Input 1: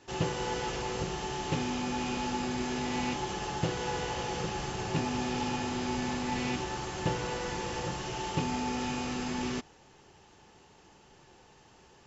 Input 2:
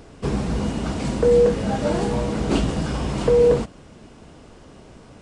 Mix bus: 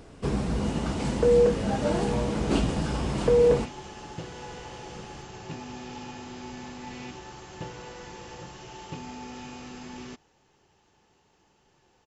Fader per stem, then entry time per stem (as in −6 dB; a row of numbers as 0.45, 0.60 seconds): −7.5, −4.0 decibels; 0.55, 0.00 seconds